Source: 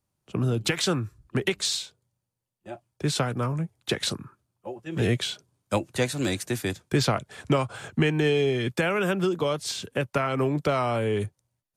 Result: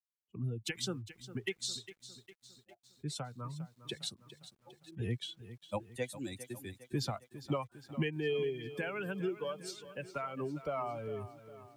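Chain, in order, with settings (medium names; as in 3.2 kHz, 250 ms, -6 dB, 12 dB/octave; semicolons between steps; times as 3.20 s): expander on every frequency bin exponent 2; bit-crushed delay 405 ms, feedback 55%, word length 9-bit, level -14 dB; trim -8 dB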